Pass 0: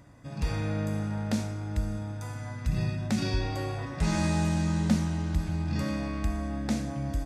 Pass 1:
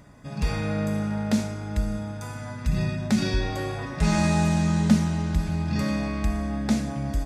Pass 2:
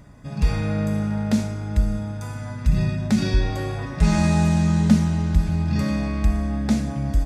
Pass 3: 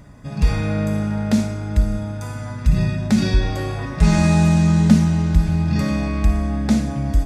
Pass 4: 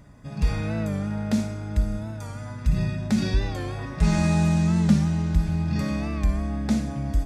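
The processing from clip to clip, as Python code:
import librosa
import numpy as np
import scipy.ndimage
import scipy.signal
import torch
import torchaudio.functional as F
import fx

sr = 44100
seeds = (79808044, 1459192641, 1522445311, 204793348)

y1 = x + 0.36 * np.pad(x, (int(4.8 * sr / 1000.0), 0))[:len(x)]
y1 = y1 * 10.0 ** (4.0 / 20.0)
y2 = fx.low_shelf(y1, sr, hz=160.0, db=7.5)
y3 = fx.room_flutter(y2, sr, wall_m=9.4, rt60_s=0.23)
y3 = y3 * 10.0 ** (3.0 / 20.0)
y4 = fx.record_warp(y3, sr, rpm=45.0, depth_cents=100.0)
y4 = y4 * 10.0 ** (-6.0 / 20.0)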